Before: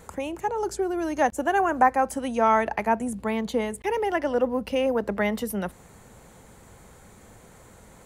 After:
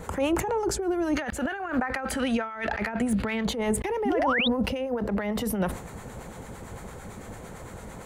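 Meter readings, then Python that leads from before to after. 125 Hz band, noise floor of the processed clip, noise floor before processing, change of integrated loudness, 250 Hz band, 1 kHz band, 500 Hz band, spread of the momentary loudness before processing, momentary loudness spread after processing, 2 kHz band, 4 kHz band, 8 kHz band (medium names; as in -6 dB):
+5.5 dB, -42 dBFS, -51 dBFS, -2.0 dB, +1.5 dB, -7.5 dB, -3.5 dB, 8 LU, 17 LU, 0.0 dB, +7.0 dB, +3.5 dB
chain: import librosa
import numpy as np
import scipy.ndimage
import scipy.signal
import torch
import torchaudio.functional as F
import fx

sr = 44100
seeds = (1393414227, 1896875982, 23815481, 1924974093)

y = fx.spec_box(x, sr, start_s=1.16, length_s=2.3, low_hz=1200.0, high_hz=4900.0, gain_db=10)
y = fx.high_shelf(y, sr, hz=3300.0, db=-6.5)
y = fx.over_compress(y, sr, threshold_db=-31.0, ratio=-1.0)
y = 10.0 ** (-21.0 / 20.0) * np.tanh(y / 10.0 ** (-21.0 / 20.0))
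y = fx.harmonic_tremolo(y, sr, hz=8.9, depth_pct=50, crossover_hz=800.0)
y = fx.spec_paint(y, sr, seeds[0], shape='rise', start_s=4.05, length_s=0.43, low_hz=210.0, high_hz=4000.0, level_db=-31.0)
y = fx.sustainer(y, sr, db_per_s=100.0)
y = F.gain(torch.from_numpy(y), 5.5).numpy()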